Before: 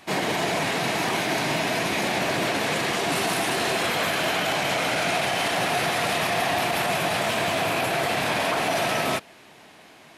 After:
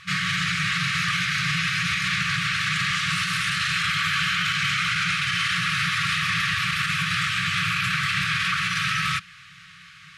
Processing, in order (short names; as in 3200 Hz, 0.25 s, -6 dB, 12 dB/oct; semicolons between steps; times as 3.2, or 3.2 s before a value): FFT band-reject 190–1100 Hz; limiter -20 dBFS, peak gain reduction 5 dB; air absorption 69 m; gain +6.5 dB